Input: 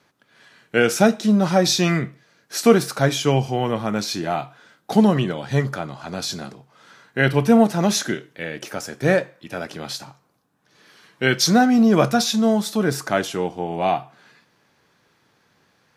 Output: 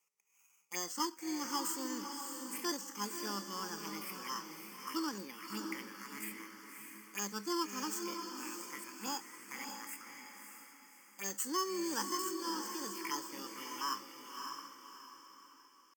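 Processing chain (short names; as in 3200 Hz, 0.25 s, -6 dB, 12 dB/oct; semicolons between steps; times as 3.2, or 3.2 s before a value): FFT order left unsorted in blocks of 16 samples; LPF 2900 Hz 12 dB/oct; pitch shift +7 st; HPF 120 Hz; differentiator; envelope phaser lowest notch 270 Hz, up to 2300 Hz, full sweep at -36 dBFS; low shelf 420 Hz +4 dB; fixed phaser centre 1600 Hz, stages 4; on a send: diffused feedback echo 0.6 s, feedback 40%, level -5 dB; on the sum: gain +4.5 dB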